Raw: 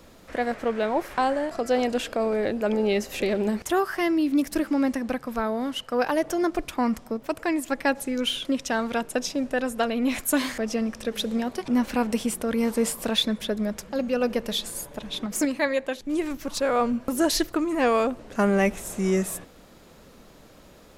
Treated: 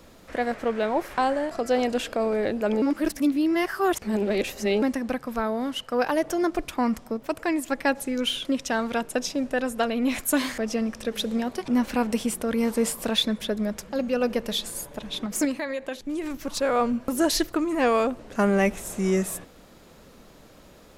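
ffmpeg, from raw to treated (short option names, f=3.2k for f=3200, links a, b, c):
-filter_complex "[0:a]asettb=1/sr,asplit=3[a][b][c];[a]atrim=end=15.534[d];[b]atrim=start=15.53:end=16.37,asetpts=PTS-STARTPTS,afade=t=in:d=0.004:c=qsin,afade=t=out:st=0.836:d=0.004:c=qsin,acompressor=threshold=-26dB:ratio=6:attack=3.2:release=140:knee=1:detection=peak[e];[c]atrim=start=16.366[f];[d][e]acrossfade=d=0.004:c1=hsin:c2=qsin[g];[g][f]acrossfade=d=0.004:c1=qsin:c2=hsin,asplit=3[h][i][j];[h]atrim=end=2.822[k];[i]atrim=start=2.818:end=4.822,asetpts=PTS-STARTPTS,areverse[l];[j]atrim=start=4.818[m];[k][l]acrossfade=d=0.004:c1=hsin:c2=hsin[n];[n][m]acrossfade=d=0.004:c1=hsin:c2=hsin"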